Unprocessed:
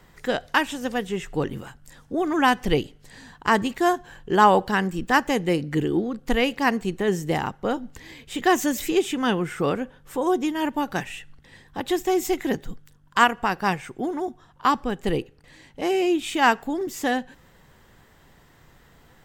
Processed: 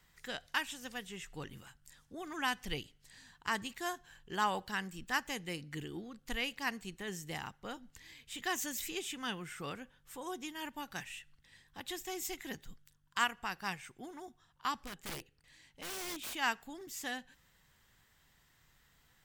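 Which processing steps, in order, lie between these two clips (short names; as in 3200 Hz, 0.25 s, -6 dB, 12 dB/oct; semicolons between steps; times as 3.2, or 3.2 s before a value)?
passive tone stack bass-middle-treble 5-5-5; 14.83–16.35 wrapped overs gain 35 dB; gain -1.5 dB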